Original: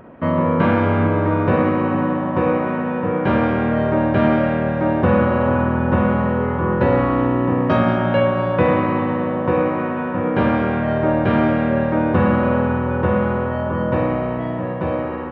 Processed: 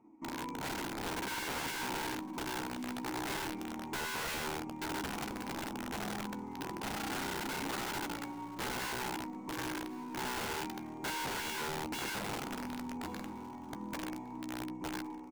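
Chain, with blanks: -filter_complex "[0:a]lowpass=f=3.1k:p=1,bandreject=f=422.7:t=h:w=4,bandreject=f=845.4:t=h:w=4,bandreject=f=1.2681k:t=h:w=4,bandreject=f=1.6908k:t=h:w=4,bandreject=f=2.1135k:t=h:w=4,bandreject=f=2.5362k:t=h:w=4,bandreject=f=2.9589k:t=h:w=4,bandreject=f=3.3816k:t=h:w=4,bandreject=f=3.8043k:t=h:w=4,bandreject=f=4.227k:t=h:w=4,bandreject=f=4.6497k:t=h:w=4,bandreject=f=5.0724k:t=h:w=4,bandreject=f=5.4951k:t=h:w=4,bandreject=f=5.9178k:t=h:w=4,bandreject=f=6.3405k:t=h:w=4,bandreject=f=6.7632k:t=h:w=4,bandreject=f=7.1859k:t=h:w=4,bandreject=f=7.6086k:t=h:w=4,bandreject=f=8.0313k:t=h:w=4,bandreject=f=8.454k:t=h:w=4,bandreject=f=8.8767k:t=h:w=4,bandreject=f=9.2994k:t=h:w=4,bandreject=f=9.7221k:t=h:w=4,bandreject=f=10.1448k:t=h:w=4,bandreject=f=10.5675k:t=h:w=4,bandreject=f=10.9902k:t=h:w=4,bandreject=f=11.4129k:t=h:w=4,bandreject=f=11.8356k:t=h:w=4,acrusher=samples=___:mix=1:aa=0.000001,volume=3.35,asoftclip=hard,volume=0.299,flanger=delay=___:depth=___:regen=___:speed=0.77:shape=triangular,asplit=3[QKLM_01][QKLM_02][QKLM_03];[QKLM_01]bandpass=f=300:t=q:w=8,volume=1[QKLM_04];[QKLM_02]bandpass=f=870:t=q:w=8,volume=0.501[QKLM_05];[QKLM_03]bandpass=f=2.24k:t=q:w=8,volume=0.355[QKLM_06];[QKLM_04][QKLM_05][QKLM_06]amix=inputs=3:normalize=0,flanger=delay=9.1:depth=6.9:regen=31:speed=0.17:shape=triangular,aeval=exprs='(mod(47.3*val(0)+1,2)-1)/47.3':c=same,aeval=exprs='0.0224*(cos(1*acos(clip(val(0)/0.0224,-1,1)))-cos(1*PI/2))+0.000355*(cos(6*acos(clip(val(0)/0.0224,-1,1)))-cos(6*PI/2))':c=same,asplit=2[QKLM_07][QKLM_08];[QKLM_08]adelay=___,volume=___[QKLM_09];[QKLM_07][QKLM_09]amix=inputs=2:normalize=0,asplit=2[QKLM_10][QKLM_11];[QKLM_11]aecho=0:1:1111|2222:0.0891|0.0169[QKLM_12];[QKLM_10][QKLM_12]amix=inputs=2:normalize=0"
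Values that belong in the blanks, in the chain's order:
6, 2.5, 4.5, -88, 15, 0.251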